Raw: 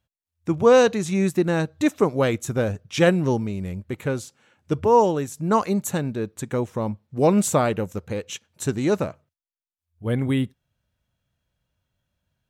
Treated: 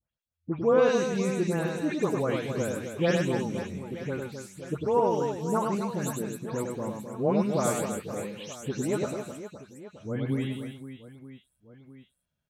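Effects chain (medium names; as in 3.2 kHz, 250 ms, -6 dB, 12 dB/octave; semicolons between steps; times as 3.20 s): delay that grows with frequency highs late, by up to 222 ms; reverse bouncing-ball echo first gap 100 ms, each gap 1.6×, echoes 5; trim -8 dB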